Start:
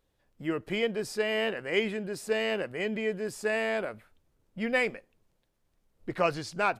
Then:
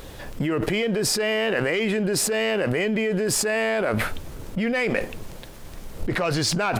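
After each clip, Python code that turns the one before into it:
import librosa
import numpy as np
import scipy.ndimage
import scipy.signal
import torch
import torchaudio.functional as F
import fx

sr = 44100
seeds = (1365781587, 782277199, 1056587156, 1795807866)

y = fx.leveller(x, sr, passes=1)
y = fx.env_flatten(y, sr, amount_pct=100)
y = y * librosa.db_to_amplitude(-3.0)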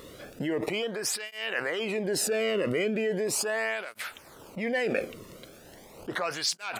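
y = fx.flanger_cancel(x, sr, hz=0.38, depth_ms=1.3)
y = y * librosa.db_to_amplitude(-2.5)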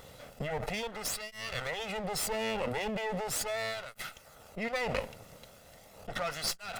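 y = fx.lower_of_two(x, sr, delay_ms=1.5)
y = y * librosa.db_to_amplitude(-3.0)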